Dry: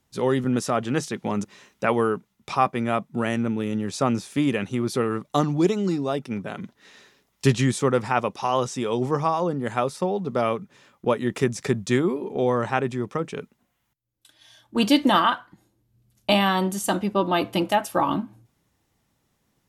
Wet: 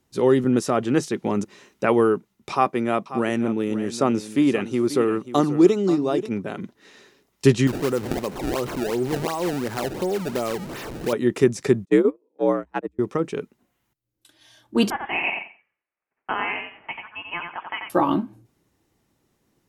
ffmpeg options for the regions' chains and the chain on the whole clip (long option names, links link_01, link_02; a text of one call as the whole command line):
ffmpeg -i in.wav -filter_complex "[0:a]asettb=1/sr,asplit=3[link_01][link_02][link_03];[link_01]atrim=end=2.524[link_04];[link_02]atrim=start=2.52:end=6.29,asetpts=PTS-STARTPTS,afade=type=in:duration=0.004:curve=qsin,afade=type=out:start_time=3.766:duration=0.004:curve=qsin,highpass=frequency=170:poles=1,aecho=1:1:536:0.211,atrim=end_sample=166257[link_05];[link_03]atrim=start=6.286[link_06];[link_04][link_05]acrossfade=duration=0.004:curve1=hsin:curve2=qsin[link_07];[link_07][link_06]acrossfade=duration=0.004:curve1=qsin:curve2=hsin,asettb=1/sr,asplit=3[link_08][link_09][link_10];[link_08]atrim=end=7.674[link_11];[link_09]atrim=start=7.67:end=11.13,asetpts=PTS-STARTPTS,afade=type=in:duration=0.004:curve=qsin,afade=type=out:start_time=3.456:duration=0.004:curve=qsin,aeval=exprs='val(0)+0.5*0.0299*sgn(val(0))':channel_layout=same,acompressor=threshold=-34dB:ratio=1.5:attack=3.2:release=140:knee=1:detection=peak,acrusher=samples=24:mix=1:aa=0.000001:lfo=1:lforange=38.4:lforate=2.8[link_12];[link_10]atrim=start=11.126[link_13];[link_11][link_12]acrossfade=duration=0.004:curve1=hsin:curve2=qsin[link_14];[link_14][link_13]acrossfade=duration=0.004:curve1=qsin:curve2=hsin,asettb=1/sr,asplit=3[link_15][link_16][link_17];[link_15]atrim=end=11.854[link_18];[link_16]atrim=start=11.85:end=12.99,asetpts=PTS-STARTPTS,afade=type=in:duration=0.004:curve=qsin,afade=type=out:start_time=1.136:duration=0.004:curve=qsin,agate=range=-40dB:threshold=-22dB:ratio=16:release=100:detection=peak,equalizer=frequency=4900:width=0.79:gain=-6.5,afreqshift=62[link_19];[link_17]atrim=start=12.986[link_20];[link_18][link_19]acrossfade=duration=0.004:curve1=hsin:curve2=qsin[link_21];[link_21][link_20]acrossfade=duration=0.004:curve1=qsin:curve2=hsin,asettb=1/sr,asplit=3[link_22][link_23][link_24];[link_22]atrim=end=14.904[link_25];[link_23]atrim=start=14.9:end=17.9,asetpts=PTS-STARTPTS,afade=type=in:duration=0.004:curve=qsin,afade=type=out:start_time=2.996:duration=0.004:curve=qsin,highpass=frequency=1400:width=0.5412,highpass=frequency=1400:width=1.3066,aecho=1:1:89|178|267:0.562|0.112|0.0225,atrim=end_sample=132300,lowpass=frequency=3200:width_type=q:width=0.5098,lowpass=frequency=3200:width_type=q:width=0.6013,lowpass=frequency=3200:width_type=q:width=0.9,lowpass=frequency=3200:width_type=q:width=2.563,afreqshift=-3800[link_26];[link_24]atrim=start=17.896[link_27];[link_25][link_26]acrossfade=duration=0.004:curve1=hsin:curve2=qsin[link_28];[link_28][link_27]acrossfade=duration=0.004:curve1=qsin:curve2=hsin,equalizer=frequency=350:width_type=o:width=0.86:gain=7.5,bandreject=frequency=3400:width=27" out.wav